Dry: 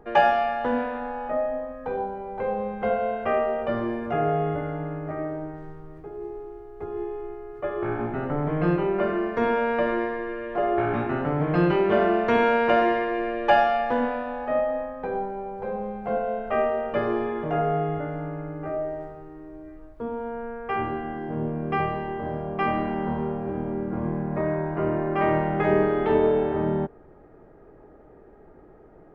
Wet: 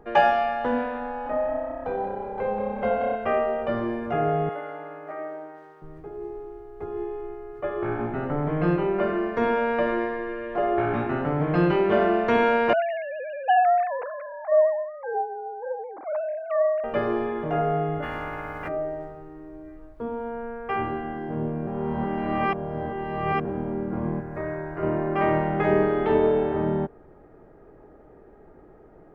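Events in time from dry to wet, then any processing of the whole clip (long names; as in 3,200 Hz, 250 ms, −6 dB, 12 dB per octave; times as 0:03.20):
0:01.07–0:03.16: echo with shifted repeats 182 ms, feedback 51%, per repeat +32 Hz, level −8.5 dB
0:04.49–0:05.82: high-pass filter 530 Hz
0:12.73–0:16.84: three sine waves on the formant tracks
0:18.02–0:18.67: ceiling on every frequency bin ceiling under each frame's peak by 28 dB
0:21.67–0:23.45: reverse
0:24.20–0:24.83: drawn EQ curve 120 Hz 0 dB, 190 Hz −13 dB, 350 Hz −4 dB, 1,000 Hz −6 dB, 1,600 Hz +1 dB, 3,200 Hz −6 dB, 5,800 Hz +2 dB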